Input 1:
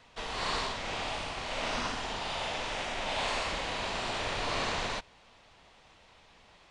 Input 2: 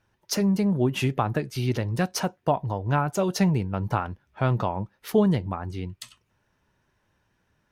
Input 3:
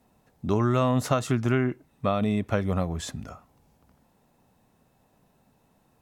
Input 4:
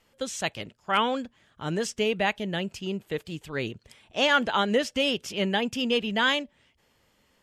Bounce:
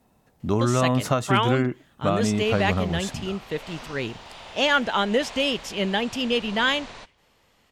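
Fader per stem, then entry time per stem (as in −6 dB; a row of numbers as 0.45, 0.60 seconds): −7.5 dB, muted, +1.5 dB, +1.5 dB; 2.05 s, muted, 0.00 s, 0.40 s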